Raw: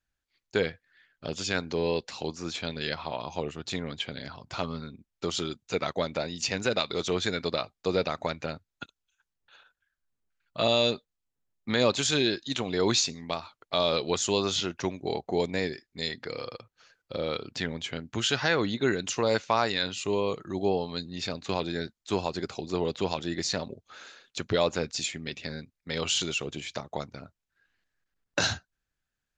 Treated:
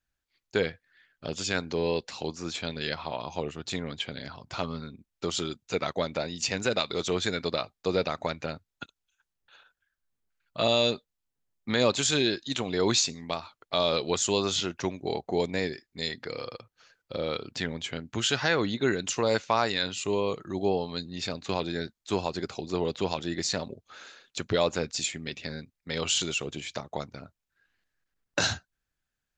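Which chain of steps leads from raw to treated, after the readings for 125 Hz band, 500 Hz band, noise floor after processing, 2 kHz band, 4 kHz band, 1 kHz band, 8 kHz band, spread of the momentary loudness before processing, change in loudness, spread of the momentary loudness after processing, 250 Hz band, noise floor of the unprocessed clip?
0.0 dB, 0.0 dB, under -85 dBFS, 0.0 dB, 0.0 dB, 0.0 dB, +2.0 dB, 13 LU, 0.0 dB, 13 LU, 0.0 dB, under -85 dBFS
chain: dynamic bell 7.7 kHz, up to +6 dB, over -54 dBFS, Q 5.3

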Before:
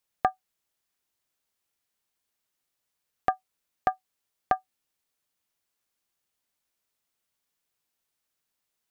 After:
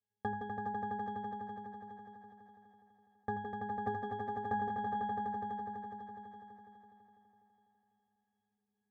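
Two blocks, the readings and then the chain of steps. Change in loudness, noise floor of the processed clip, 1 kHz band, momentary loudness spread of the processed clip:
-8.0 dB, under -85 dBFS, -4.0 dB, 18 LU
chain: distance through air 470 m; hum notches 50/100/150/200/250/300/350 Hz; echo with a slow build-up 83 ms, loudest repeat 5, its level -6 dB; short-mantissa float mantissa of 2-bit; peaking EQ 230 Hz +4 dB 1 oct; pitch-class resonator G#, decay 0.59 s; two-band feedback delay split 660 Hz, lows 161 ms, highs 407 ms, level -10 dB; trim +17 dB

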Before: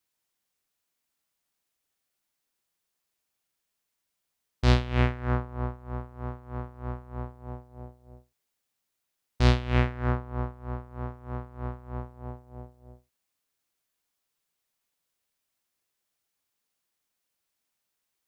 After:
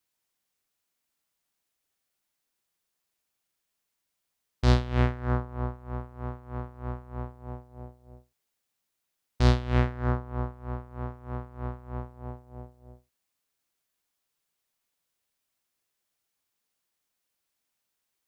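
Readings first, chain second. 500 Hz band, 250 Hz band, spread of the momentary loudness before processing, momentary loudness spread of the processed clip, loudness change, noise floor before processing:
0.0 dB, 0.0 dB, 19 LU, 18 LU, -0.5 dB, -82 dBFS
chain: dynamic bell 2.5 kHz, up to -6 dB, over -49 dBFS, Q 1.6

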